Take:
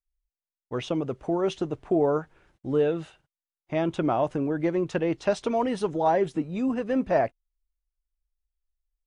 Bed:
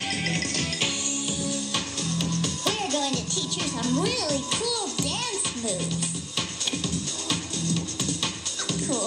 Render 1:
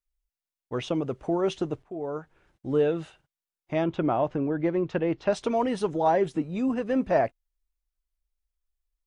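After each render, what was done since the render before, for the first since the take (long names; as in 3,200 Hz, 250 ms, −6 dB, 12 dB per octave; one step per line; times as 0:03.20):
0:01.83–0:02.77: fade in, from −19.5 dB
0:03.84–0:05.33: high-frequency loss of the air 170 metres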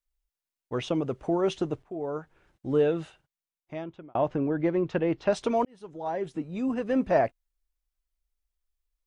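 0:03.00–0:04.15: fade out
0:05.65–0:06.97: fade in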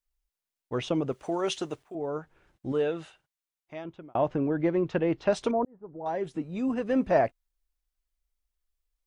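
0:01.12–0:01.95: spectral tilt +3 dB per octave
0:02.72–0:03.85: low-shelf EQ 420 Hz −8.5 dB
0:05.51–0:06.06: Gaussian smoothing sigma 7 samples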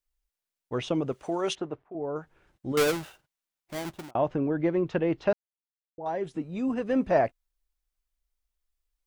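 0:01.55–0:02.16: low-pass filter 1,500 Hz
0:02.77–0:04.11: each half-wave held at its own peak
0:05.33–0:05.98: silence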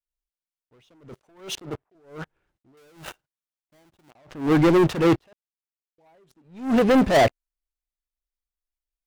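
leveller curve on the samples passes 5
level that may rise only so fast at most 140 dB per second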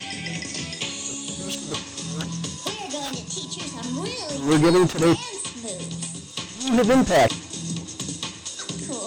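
mix in bed −4.5 dB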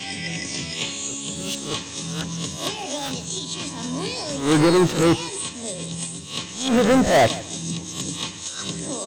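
peak hold with a rise ahead of every peak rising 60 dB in 0.39 s
repeating echo 153 ms, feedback 24%, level −19 dB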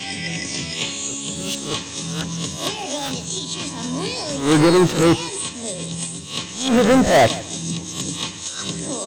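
level +2.5 dB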